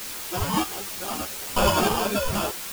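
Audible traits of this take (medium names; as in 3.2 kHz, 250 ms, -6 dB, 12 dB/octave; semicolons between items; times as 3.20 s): aliases and images of a low sample rate 2 kHz, jitter 0%; random-step tremolo 3.2 Hz, depth 95%; a quantiser's noise floor 6-bit, dither triangular; a shimmering, thickened sound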